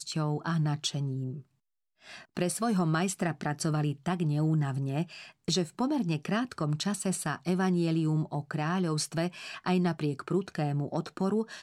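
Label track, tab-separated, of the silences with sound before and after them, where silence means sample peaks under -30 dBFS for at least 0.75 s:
1.290000	2.370000	silence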